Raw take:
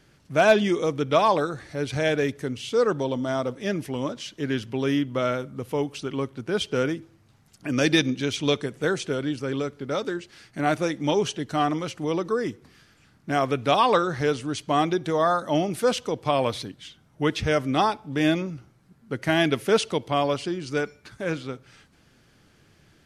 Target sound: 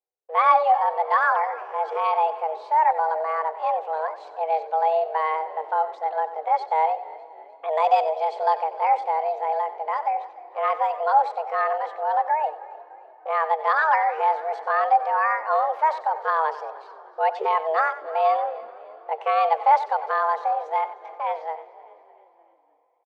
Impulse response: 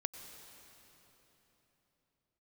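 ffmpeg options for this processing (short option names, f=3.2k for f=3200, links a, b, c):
-filter_complex "[0:a]agate=range=-40dB:threshold=-45dB:ratio=16:detection=peak,lowpass=1.1k,equalizer=f=380:t=o:w=0.32:g=8.5,afreqshift=250,asetrate=55563,aresample=44100,atempo=0.793701,asplit=5[a][b][c][d][e];[b]adelay=303,afreqshift=-46,volume=-20dB[f];[c]adelay=606,afreqshift=-92,volume=-26.2dB[g];[d]adelay=909,afreqshift=-138,volume=-32.4dB[h];[e]adelay=1212,afreqshift=-184,volume=-38.6dB[i];[a][f][g][h][i]amix=inputs=5:normalize=0,asplit=2[j][k];[1:a]atrim=start_sample=2205,adelay=93[l];[k][l]afir=irnorm=-1:irlink=0,volume=-13dB[m];[j][m]amix=inputs=2:normalize=0"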